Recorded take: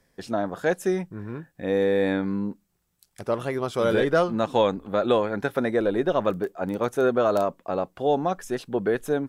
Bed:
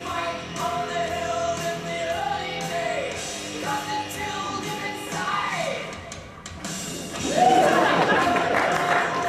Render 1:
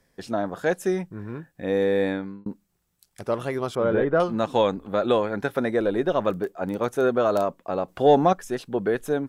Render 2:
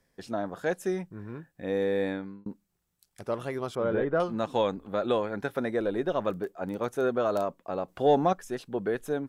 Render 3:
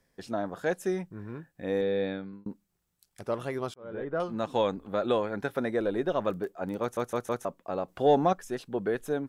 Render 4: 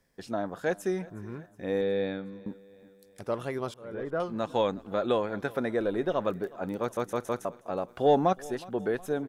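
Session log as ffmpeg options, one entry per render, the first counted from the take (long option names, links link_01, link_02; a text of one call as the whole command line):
ffmpeg -i in.wav -filter_complex "[0:a]asettb=1/sr,asplit=3[link_01][link_02][link_03];[link_01]atrim=end=3.754[link_04];[link_02]atrim=start=3.75:end=4.2,asetpts=PTS-STARTPTS,afade=type=in:duration=0.004:curve=qsin,afade=type=out:start_time=0.446:duration=0.004:curve=qsin,lowpass=1600[link_05];[link_03]atrim=start=4.196[link_06];[link_04][link_05]acrossfade=duration=0.004:curve1=hsin:curve2=qsin[link_07];[link_07][link_06]acrossfade=duration=0.004:curve1=qsin:curve2=hsin,asettb=1/sr,asplit=3[link_08][link_09][link_10];[link_08]atrim=end=7.884[link_11];[link_09]atrim=start=7.88:end=8.33,asetpts=PTS-STARTPTS,afade=type=in:duration=0.004:curve=qsin,afade=type=out:start_time=0.446:duration=0.004:curve=qsin,acontrast=63[link_12];[link_10]atrim=start=8.326[link_13];[link_11][link_12]acrossfade=duration=0.004:curve1=hsin:curve2=qsin[link_14];[link_14][link_13]acrossfade=duration=0.004:curve1=qsin:curve2=hsin,asplit=2[link_15][link_16];[link_15]atrim=end=2.46,asetpts=PTS-STARTPTS,afade=type=out:start_time=2.01:duration=0.45[link_17];[link_16]atrim=start=2.46,asetpts=PTS-STARTPTS,afade=type=in:duration=0.004:curve=hsin[link_18];[link_17][link_18]concat=n=2:v=0:a=1" out.wav
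ffmpeg -i in.wav -af "volume=-5.5dB" out.wav
ffmpeg -i in.wav -filter_complex "[0:a]asettb=1/sr,asplit=3[link_01][link_02][link_03];[link_01]atrim=end=1.814[link_04];[link_02]atrim=start=1.81:end=2.33,asetpts=PTS-STARTPTS,afade=type=in:duration=0.004:curve=qsin,afade=type=out:start_time=0.516:duration=0.004:curve=qsin,highpass=100,equalizer=frequency=120:width_type=q:width=4:gain=9,equalizer=frequency=310:width_type=q:width=4:gain=-5,equalizer=frequency=960:width_type=q:width=4:gain=-9,equalizer=frequency=1900:width_type=q:width=4:gain=-5,equalizer=frequency=3800:width_type=q:width=4:gain=3,lowpass=frequency=4600:width=0.5412,lowpass=frequency=4600:width=1.3066[link_05];[link_03]atrim=start=2.326[link_06];[link_04][link_05]acrossfade=duration=0.004:curve1=hsin:curve2=qsin[link_07];[link_07][link_06]acrossfade=duration=0.004:curve1=qsin:curve2=hsin,asplit=6[link_08][link_09][link_10][link_11][link_12][link_13];[link_08]atrim=end=3.74,asetpts=PTS-STARTPTS,afade=type=out:start_time=3.736:duration=0.004:curve=hsin[link_14];[link_09]atrim=start=3.74:end=6.972,asetpts=PTS-STARTPTS,afade=type=in:duration=1.05:curve=qsin[link_15];[link_10]atrim=start=6.808:end=6.972[link_16];[link_11]atrim=start=6.808:end=6.972[link_17];[link_12]atrim=start=6.808:end=6.972[link_18];[link_13]atrim=start=7.448[link_19];[link_14][link_15]concat=n=2:v=0:a=1[link_20];[link_20][link_16]acrossfade=duration=0.004:curve1=hsin:curve2=hsin[link_21];[link_21][link_17]acrossfade=duration=0.004:curve1=hsin:curve2=hsin[link_22];[link_22][link_18]acrossfade=duration=0.004:curve1=hsin:curve2=hsin[link_23];[link_23][link_19]acrossfade=duration=0.004:curve1=hsin:curve2=hsin" out.wav
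ffmpeg -i in.wav -af "aecho=1:1:365|730|1095|1460:0.0841|0.0471|0.0264|0.0148" out.wav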